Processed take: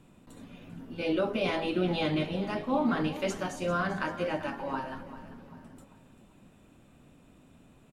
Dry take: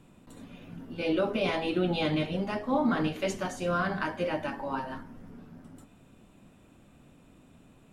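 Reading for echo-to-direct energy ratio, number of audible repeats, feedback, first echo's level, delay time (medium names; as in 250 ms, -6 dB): -14.0 dB, 3, 40%, -14.5 dB, 393 ms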